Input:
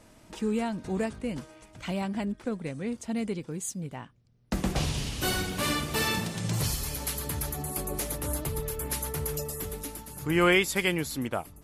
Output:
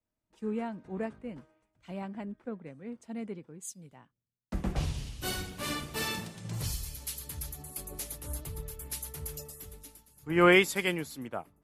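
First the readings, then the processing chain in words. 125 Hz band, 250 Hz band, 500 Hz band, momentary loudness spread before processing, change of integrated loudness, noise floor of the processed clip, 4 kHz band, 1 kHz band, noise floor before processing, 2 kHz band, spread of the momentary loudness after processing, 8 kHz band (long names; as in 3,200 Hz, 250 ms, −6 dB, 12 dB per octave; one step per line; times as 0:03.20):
−5.5 dB, −4.0 dB, −1.5 dB, 9 LU, −3.0 dB, below −85 dBFS, −5.0 dB, −2.5 dB, −56 dBFS, −1.5 dB, 15 LU, −6.0 dB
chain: multiband upward and downward expander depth 100%
level −7 dB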